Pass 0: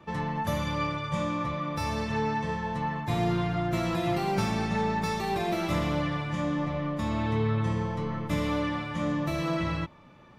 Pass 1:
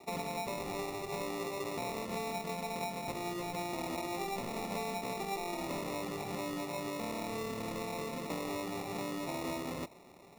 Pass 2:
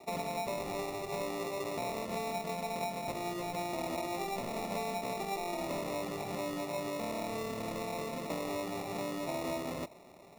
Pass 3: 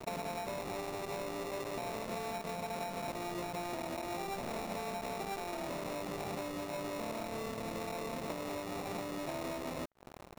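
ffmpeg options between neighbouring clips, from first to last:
-af "highpass=320,acompressor=threshold=0.0178:ratio=6,acrusher=samples=28:mix=1:aa=0.000001"
-af "equalizer=f=630:t=o:w=0.24:g=7.5"
-af "acompressor=threshold=0.00631:ratio=16,acrusher=bits=7:mix=0:aa=0.5,volume=2.37"

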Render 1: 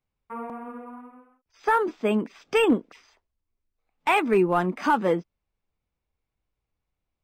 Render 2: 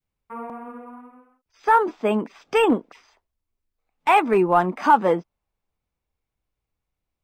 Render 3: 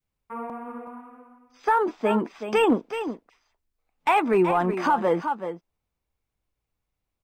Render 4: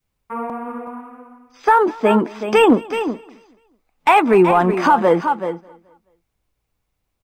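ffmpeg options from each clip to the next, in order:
-af "adynamicequalizer=threshold=0.0158:dfrequency=840:dqfactor=1.1:tfrequency=840:tqfactor=1.1:attack=5:release=100:ratio=0.375:range=4:mode=boostabove:tftype=bell"
-af "aecho=1:1:375:0.251,alimiter=limit=0.237:level=0:latency=1:release=60"
-af "aecho=1:1:214|428|642:0.0708|0.0304|0.0131,volume=2.51"

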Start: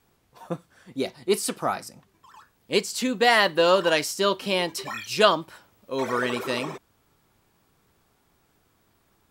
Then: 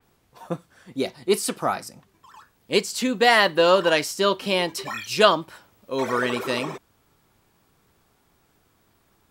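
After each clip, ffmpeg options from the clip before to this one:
-af "adynamicequalizer=threshold=0.02:dfrequency=3900:dqfactor=0.7:tfrequency=3900:tqfactor=0.7:attack=5:release=100:ratio=0.375:range=1.5:mode=cutabove:tftype=highshelf,volume=1.26"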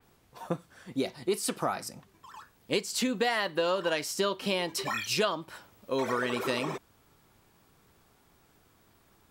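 -af "acompressor=threshold=0.0501:ratio=5"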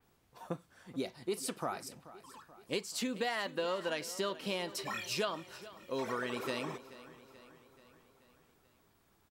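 -af "aecho=1:1:432|864|1296|1728|2160:0.141|0.0819|0.0475|0.0276|0.016,volume=0.447"

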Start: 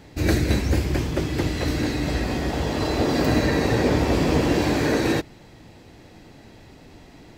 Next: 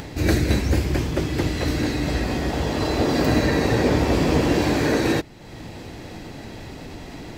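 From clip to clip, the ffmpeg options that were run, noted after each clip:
-af "acompressor=mode=upward:threshold=0.0447:ratio=2.5,volume=1.12"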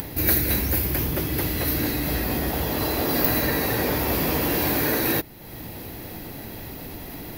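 -filter_complex "[0:a]acrossover=split=750|3300[s0][s1][s2];[s0]alimiter=limit=0.119:level=0:latency=1[s3];[s2]aexciter=amount=8:drive=9.8:freq=11000[s4];[s3][s1][s4]amix=inputs=3:normalize=0,volume=0.891"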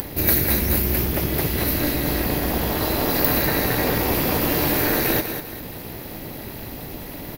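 -af "aecho=1:1:197|394|591|788:0.422|0.16|0.0609|0.0231,tremolo=f=290:d=0.788,volume=1.78"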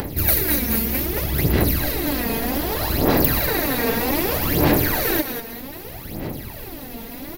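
-af "aphaser=in_gain=1:out_gain=1:delay=4.4:decay=0.66:speed=0.64:type=sinusoidal,volume=0.75"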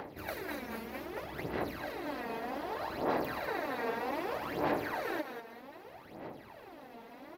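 -af "bandpass=f=900:t=q:w=0.88:csg=0,volume=0.376"

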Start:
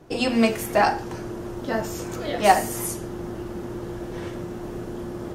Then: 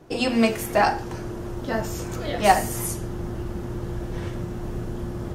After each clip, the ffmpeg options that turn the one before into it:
-af "asubboost=boost=3:cutoff=170"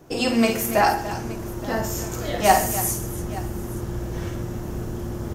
-filter_complex "[0:a]aexciter=amount=1.8:drive=5.7:freq=5600,asplit=2[s0][s1];[s1]aecho=0:1:51|129|286|871:0.447|0.141|0.211|0.112[s2];[s0][s2]amix=inputs=2:normalize=0"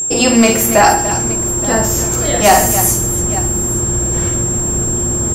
-af "aeval=exprs='val(0)+0.0501*sin(2*PI*7500*n/s)':c=same,apsyclip=3.98,volume=0.794"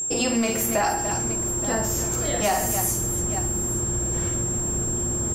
-af "acompressor=threshold=0.316:ratio=6,volume=0.355"

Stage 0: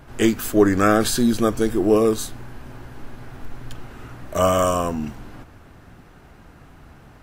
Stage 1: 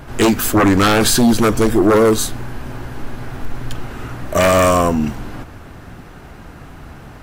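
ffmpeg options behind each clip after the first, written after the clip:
-af "aeval=exprs='0.631*sin(PI/2*3.16*val(0)/0.631)':c=same,volume=0.631"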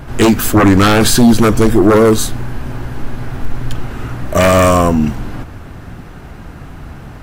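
-af "bass=f=250:g=4,treble=f=4000:g=-1,volume=1.33"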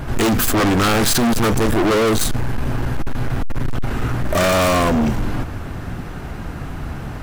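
-af "asoftclip=type=hard:threshold=0.133,volume=1.41"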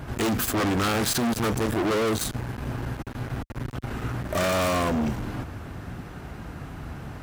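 -af "highpass=48,volume=0.398"

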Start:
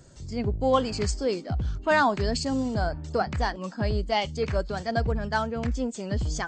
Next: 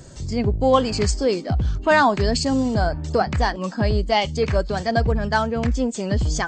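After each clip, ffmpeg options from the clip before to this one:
-filter_complex "[0:a]bandreject=f=1400:w=21,asplit=2[s0][s1];[s1]acompressor=threshold=0.0178:ratio=6,volume=0.891[s2];[s0][s2]amix=inputs=2:normalize=0,volume=1.68"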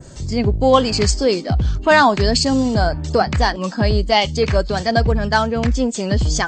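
-af "adynamicequalizer=threshold=0.01:dfrequency=4400:dqfactor=0.82:tfrequency=4400:tqfactor=0.82:attack=5:release=100:ratio=0.375:range=2:mode=boostabove:tftype=bell,volume=1.5"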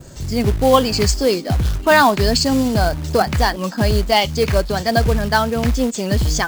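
-af "acrusher=bits=4:mode=log:mix=0:aa=0.000001"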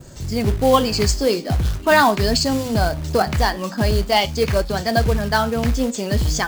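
-af "flanger=delay=8:depth=6.6:regen=-76:speed=0.43:shape=triangular,volume=1.33"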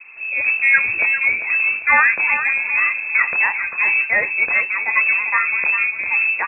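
-af "lowpass=f=2300:t=q:w=0.5098,lowpass=f=2300:t=q:w=0.6013,lowpass=f=2300:t=q:w=0.9,lowpass=f=2300:t=q:w=2.563,afreqshift=-2700,aecho=1:1:398|796|1194:0.335|0.0971|0.0282"

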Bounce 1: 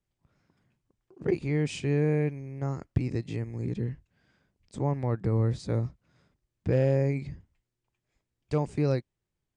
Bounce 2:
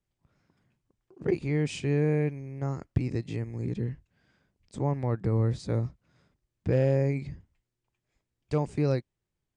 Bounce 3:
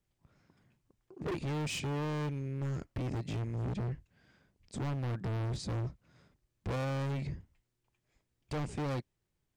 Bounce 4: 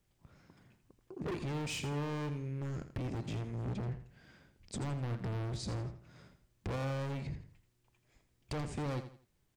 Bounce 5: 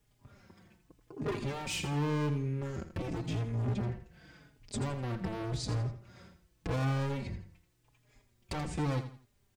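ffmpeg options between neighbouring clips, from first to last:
-af anull
-af "volume=56.2,asoftclip=hard,volume=0.0178,volume=1.26"
-filter_complex "[0:a]acompressor=threshold=0.00562:ratio=3,asplit=2[s0][s1];[s1]aecho=0:1:83|166|249:0.282|0.0902|0.0289[s2];[s0][s2]amix=inputs=2:normalize=0,volume=1.88"
-filter_complex "[0:a]asplit=2[s0][s1];[s1]adelay=4.3,afreqshift=-0.88[s2];[s0][s2]amix=inputs=2:normalize=1,volume=2.24"

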